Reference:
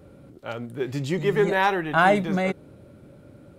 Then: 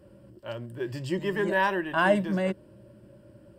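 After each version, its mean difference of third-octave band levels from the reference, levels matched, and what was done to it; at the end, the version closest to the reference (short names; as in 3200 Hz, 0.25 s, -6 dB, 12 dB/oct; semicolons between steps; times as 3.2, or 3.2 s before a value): 2.5 dB: ripple EQ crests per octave 1.3, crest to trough 11 dB; gain -6 dB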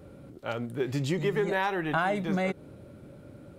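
3.5 dB: compressor 6:1, threshold -24 dBFS, peak gain reduction 10.5 dB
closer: first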